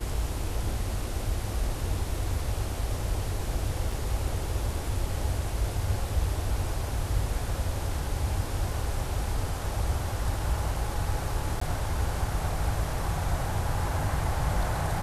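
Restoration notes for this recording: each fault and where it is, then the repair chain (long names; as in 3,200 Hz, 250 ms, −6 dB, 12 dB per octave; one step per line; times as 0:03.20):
0:03.92: drop-out 3.4 ms
0:11.60–0:11.61: drop-out 14 ms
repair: repair the gap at 0:03.92, 3.4 ms
repair the gap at 0:11.60, 14 ms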